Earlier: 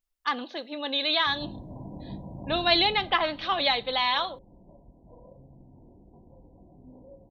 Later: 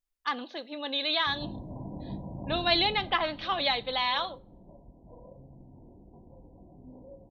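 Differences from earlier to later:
speech -3.0 dB; background: send on

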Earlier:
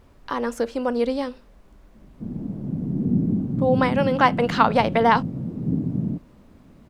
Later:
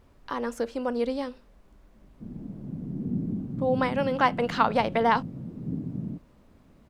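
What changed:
speech -5.0 dB; background -8.5 dB

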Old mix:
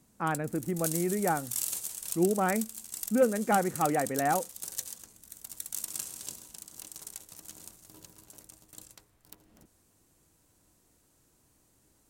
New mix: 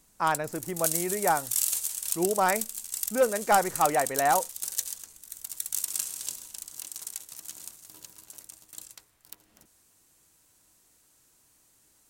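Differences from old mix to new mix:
speech: remove cabinet simulation 110–3100 Hz, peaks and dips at 230 Hz +4 dB, 410 Hz -4 dB, 630 Hz -7 dB, 970 Hz -9 dB; master: add tilt shelf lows -6 dB, about 790 Hz

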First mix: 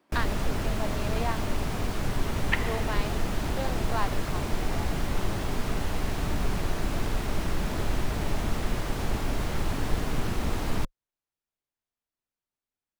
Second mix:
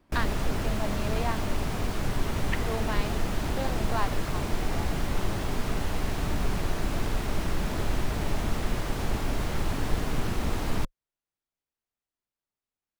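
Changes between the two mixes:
speech: remove high-pass 280 Hz; second sound -7.0 dB

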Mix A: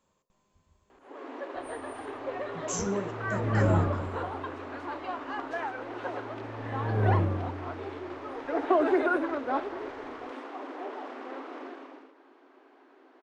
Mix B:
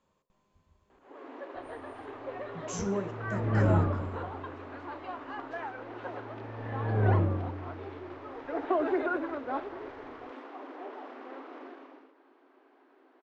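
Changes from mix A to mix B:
first sound -4.0 dB; master: add distance through air 92 m

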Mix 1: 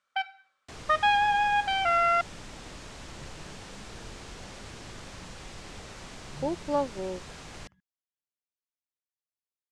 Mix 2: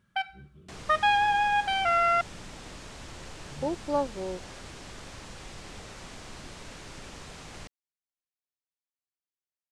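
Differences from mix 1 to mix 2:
speech: entry -2.80 s; second sound: add low-pass 8.4 kHz 24 dB/octave; master: remove low-pass 8.1 kHz 24 dB/octave

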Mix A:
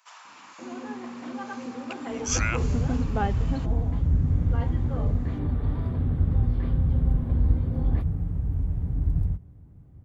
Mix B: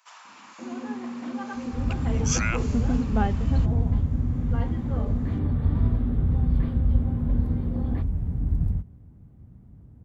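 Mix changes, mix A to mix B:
second sound: entry -0.55 s; master: add peaking EQ 220 Hz +10.5 dB 0.22 oct

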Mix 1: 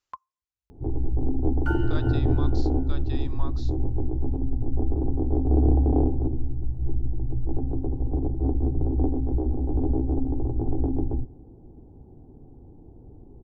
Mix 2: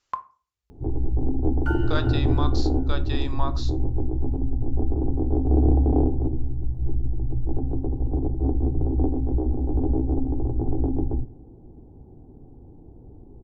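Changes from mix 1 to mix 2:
speech +6.0 dB; reverb: on, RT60 0.40 s

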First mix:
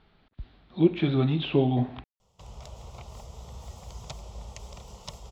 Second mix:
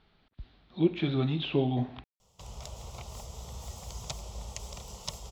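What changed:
speech -4.5 dB; master: add treble shelf 4.6 kHz +9.5 dB

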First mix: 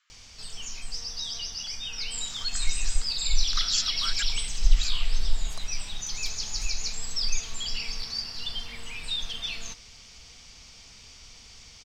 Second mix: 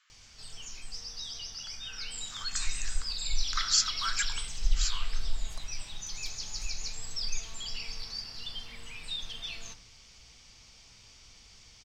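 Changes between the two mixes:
background -9.0 dB; reverb: on, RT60 0.80 s

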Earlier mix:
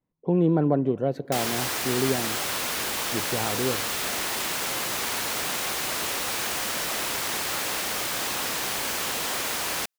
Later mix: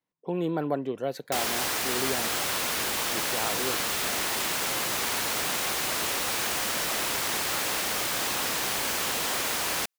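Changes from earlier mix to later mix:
speech: add tilt EQ +4 dB/octave; reverb: off

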